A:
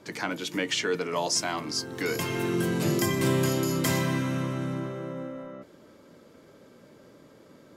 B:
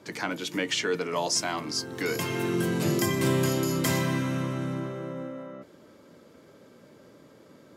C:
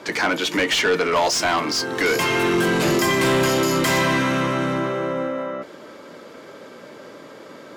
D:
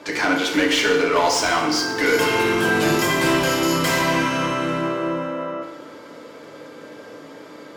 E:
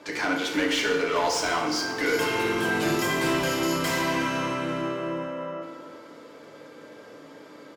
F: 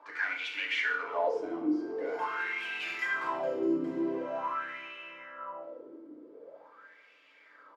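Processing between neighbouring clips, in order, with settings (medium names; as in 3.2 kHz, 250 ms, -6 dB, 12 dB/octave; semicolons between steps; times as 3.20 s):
high-pass 54 Hz
overdrive pedal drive 22 dB, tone 3.3 kHz, clips at -11.5 dBFS; trim +2 dB
FDN reverb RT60 1.1 s, low-frequency decay 0.8×, high-frequency decay 0.75×, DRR 0 dB; trim -2.5 dB
echo from a far wall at 63 m, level -12 dB; trim -6.5 dB
wah-wah 0.45 Hz 310–2600 Hz, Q 5.3; trim +3 dB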